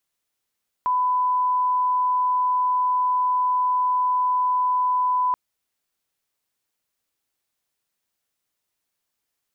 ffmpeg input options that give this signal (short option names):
-f lavfi -i "sine=f=1000:d=4.48:r=44100,volume=0.06dB"